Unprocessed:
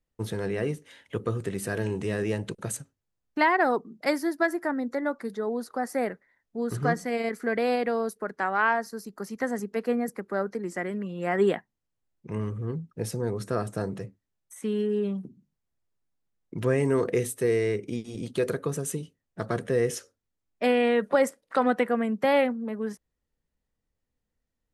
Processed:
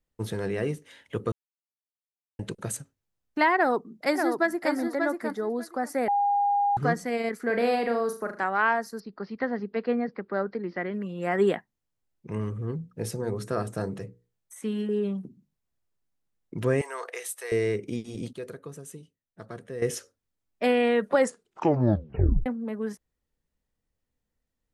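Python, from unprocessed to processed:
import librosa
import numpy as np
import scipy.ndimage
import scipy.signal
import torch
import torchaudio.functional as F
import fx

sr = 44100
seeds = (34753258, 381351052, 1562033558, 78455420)

y = fx.echo_throw(x, sr, start_s=3.56, length_s=1.17, ms=590, feedback_pct=15, wet_db=-5.0)
y = fx.room_flutter(y, sr, wall_m=6.5, rt60_s=0.34, at=(7.46, 8.44))
y = fx.steep_lowpass(y, sr, hz=4900.0, slope=72, at=(9.0, 10.94))
y = fx.hum_notches(y, sr, base_hz=60, count=8, at=(12.77, 14.89))
y = fx.highpass(y, sr, hz=690.0, slope=24, at=(16.81, 17.52))
y = fx.edit(y, sr, fx.silence(start_s=1.32, length_s=1.07),
    fx.bleep(start_s=6.08, length_s=0.69, hz=811.0, db=-20.5),
    fx.clip_gain(start_s=18.33, length_s=1.49, db=-11.5),
    fx.tape_stop(start_s=21.19, length_s=1.27), tone=tone)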